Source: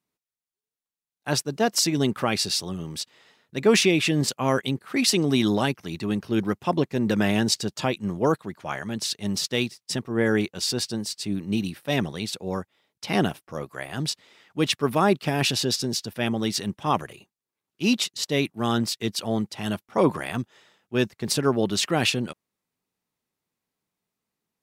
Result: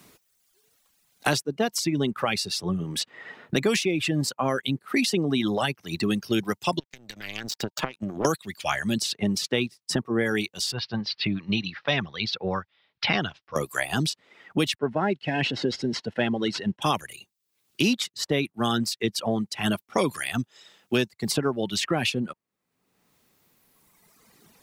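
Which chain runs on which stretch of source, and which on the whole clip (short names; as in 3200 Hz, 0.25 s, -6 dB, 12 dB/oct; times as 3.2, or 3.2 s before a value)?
6.79–8.25 bell 9600 Hz -10 dB 0.38 oct + compressor 16:1, threshold -31 dBFS + power-law curve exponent 2
10.72–13.56 steep low-pass 5100 Hz + low-pass opened by the level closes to 2900 Hz, open at -20.5 dBFS + bell 310 Hz -12 dB 2.6 oct
14.75–16.82 CVSD 64 kbps + LPF 2600 Hz + notch comb 1200 Hz
whole clip: reverb removal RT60 1.8 s; notch 920 Hz, Q 24; three-band squash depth 100%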